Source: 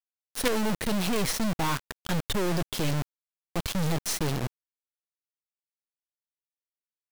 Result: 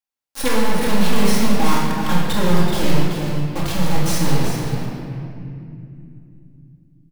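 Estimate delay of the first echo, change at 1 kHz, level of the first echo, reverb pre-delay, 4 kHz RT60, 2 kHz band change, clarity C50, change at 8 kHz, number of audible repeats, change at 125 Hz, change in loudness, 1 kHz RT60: 381 ms, +10.5 dB, -6.0 dB, 4 ms, 1.7 s, +8.0 dB, -1.5 dB, +5.5 dB, 1, +10.5 dB, +8.5 dB, 2.2 s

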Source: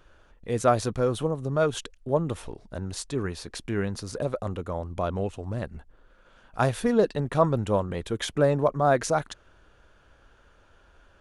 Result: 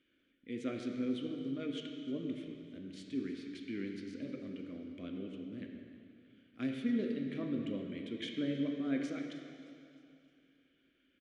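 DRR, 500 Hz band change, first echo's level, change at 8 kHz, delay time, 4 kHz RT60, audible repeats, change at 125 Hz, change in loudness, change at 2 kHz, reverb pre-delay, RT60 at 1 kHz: 2.0 dB, -18.5 dB, -18.0 dB, under -20 dB, 309 ms, 2.5 s, 3, -19.0 dB, -12.5 dB, -13.5 dB, 4 ms, 2.6 s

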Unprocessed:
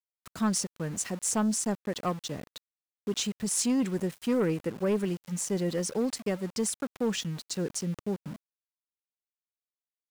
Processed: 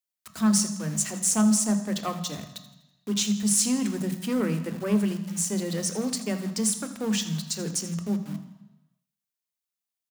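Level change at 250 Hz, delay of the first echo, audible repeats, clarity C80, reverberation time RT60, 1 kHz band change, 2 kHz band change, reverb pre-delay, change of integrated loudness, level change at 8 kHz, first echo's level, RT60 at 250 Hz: +5.0 dB, 82 ms, 3, 11.0 dB, 1.1 s, +1.0 dB, +2.5 dB, 3 ms, +4.5 dB, +6.5 dB, -15.0 dB, 0.95 s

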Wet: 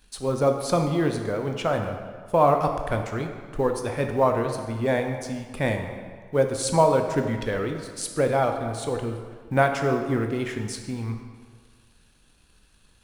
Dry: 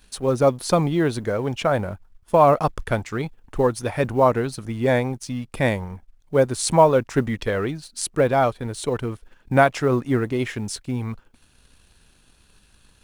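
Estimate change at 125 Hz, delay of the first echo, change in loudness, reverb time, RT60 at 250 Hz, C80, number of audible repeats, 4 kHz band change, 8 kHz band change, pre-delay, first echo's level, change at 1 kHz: -3.0 dB, no echo, -3.0 dB, 1.7 s, 1.5 s, 7.5 dB, no echo, -3.5 dB, -3.5 dB, 13 ms, no echo, -3.0 dB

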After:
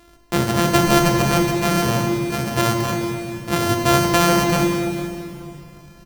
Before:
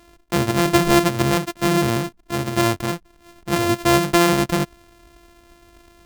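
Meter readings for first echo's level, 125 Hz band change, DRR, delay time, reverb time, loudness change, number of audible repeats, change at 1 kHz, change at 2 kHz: -16.5 dB, +2.5 dB, 2.5 dB, 437 ms, 2.7 s, +1.0 dB, 1, +2.0 dB, +1.0 dB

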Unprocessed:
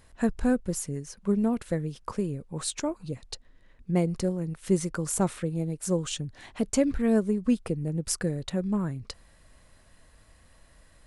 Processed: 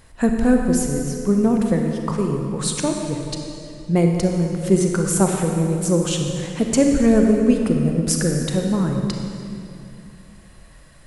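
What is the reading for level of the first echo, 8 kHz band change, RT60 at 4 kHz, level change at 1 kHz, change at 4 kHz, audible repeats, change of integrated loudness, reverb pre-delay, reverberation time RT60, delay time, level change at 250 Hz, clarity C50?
no echo, +8.5 dB, 2.0 s, +9.0 dB, +8.5 dB, no echo, +9.5 dB, 30 ms, 2.6 s, no echo, +9.5 dB, 3.0 dB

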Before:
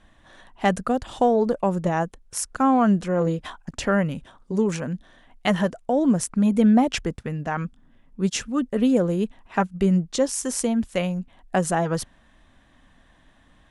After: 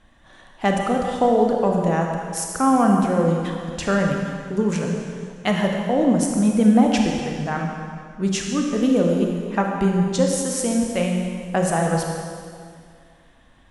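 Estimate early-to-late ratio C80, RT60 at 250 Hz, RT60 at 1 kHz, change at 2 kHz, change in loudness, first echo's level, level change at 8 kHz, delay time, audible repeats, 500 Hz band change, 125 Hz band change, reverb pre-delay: 3.0 dB, 2.1 s, 2.1 s, +2.5 dB, +2.5 dB, no echo, +2.5 dB, no echo, no echo, +3.0 dB, +3.0 dB, 28 ms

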